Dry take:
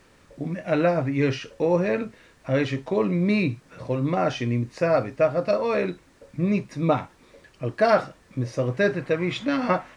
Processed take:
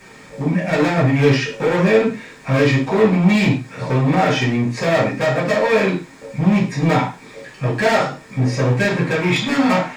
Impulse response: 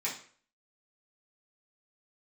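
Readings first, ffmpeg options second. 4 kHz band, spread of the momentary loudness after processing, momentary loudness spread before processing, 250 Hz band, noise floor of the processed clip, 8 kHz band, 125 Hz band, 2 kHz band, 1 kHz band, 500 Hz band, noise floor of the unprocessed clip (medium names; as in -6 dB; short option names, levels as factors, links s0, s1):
+11.0 dB, 9 LU, 11 LU, +8.0 dB, -42 dBFS, no reading, +9.5 dB, +10.0 dB, +7.0 dB, +5.0 dB, -57 dBFS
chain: -filter_complex "[0:a]asplit=2[s0][s1];[s1]acompressor=threshold=0.0282:ratio=6,volume=0.794[s2];[s0][s2]amix=inputs=2:normalize=0,asoftclip=type=hard:threshold=0.0794[s3];[1:a]atrim=start_sample=2205,atrim=end_sample=6174[s4];[s3][s4]afir=irnorm=-1:irlink=0,volume=2"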